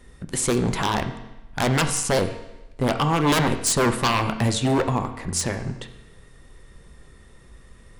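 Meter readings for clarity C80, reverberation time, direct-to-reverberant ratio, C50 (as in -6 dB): 12.5 dB, 0.95 s, 7.0 dB, 10.0 dB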